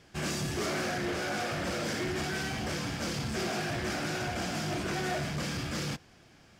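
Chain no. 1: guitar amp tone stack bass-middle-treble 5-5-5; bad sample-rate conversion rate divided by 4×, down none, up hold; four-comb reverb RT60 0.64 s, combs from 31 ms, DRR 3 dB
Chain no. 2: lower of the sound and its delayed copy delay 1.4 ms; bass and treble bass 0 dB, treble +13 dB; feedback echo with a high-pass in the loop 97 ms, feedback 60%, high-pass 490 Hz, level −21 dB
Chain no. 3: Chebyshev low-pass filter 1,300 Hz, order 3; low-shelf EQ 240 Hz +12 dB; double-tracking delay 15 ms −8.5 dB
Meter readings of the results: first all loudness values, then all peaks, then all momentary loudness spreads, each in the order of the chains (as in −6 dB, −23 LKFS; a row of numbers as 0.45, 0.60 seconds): −42.5, −29.5, −29.5 LKFS; −30.5, −16.0, −17.5 dBFS; 2, 2, 2 LU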